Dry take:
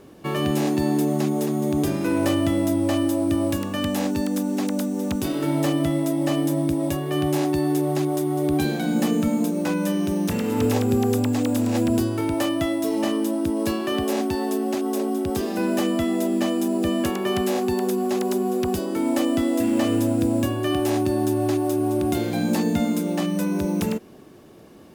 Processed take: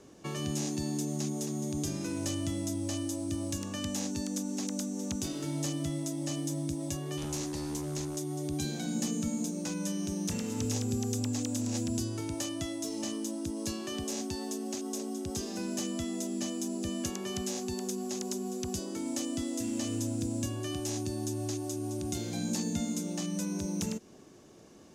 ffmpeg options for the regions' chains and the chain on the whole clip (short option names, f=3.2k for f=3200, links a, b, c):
-filter_complex "[0:a]asettb=1/sr,asplit=3[a][b][c];[a]atrim=end=7.174[d];[b]atrim=start=7.17:end=8.17,asetpts=PTS-STARTPTS,afade=t=in:d=0.004:c=qsin,afade=t=out:st=0.996:d=0.004:c=qsin,equalizer=f=820:t=o:w=0.6:g=-7,aeval=exprs='0.112*(abs(mod(val(0)/0.112+3,4)-2)-1)':c=same[e];[c]atrim=start=8.166[f];[d][e]acrossfade=d=0.004:c1=hsin:c2=qsin[g];[g][f]acrossfade=d=0.004:c1=qsin:c2=hsin,lowpass=11k,equalizer=f=6.4k:w=1.7:g=12.5,acrossover=split=240|3000[h][i][j];[i]acompressor=threshold=-32dB:ratio=5[k];[h][k][j]amix=inputs=3:normalize=0,volume=-8dB"